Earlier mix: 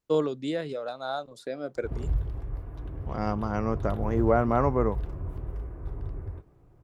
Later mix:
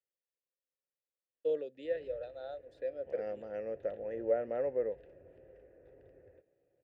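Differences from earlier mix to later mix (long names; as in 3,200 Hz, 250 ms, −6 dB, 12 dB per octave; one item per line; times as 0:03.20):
first voice: entry +1.35 s
master: add formant filter e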